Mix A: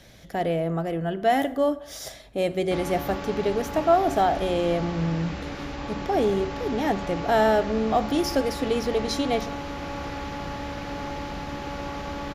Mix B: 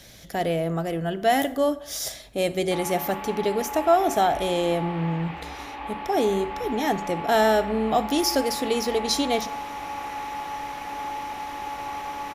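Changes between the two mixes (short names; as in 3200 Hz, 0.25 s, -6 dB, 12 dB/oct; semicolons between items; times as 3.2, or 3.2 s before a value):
background: add speaker cabinet 450–2700 Hz, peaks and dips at 560 Hz -8 dB, 840 Hz +7 dB, 1500 Hz -6 dB; master: add high shelf 3700 Hz +10.5 dB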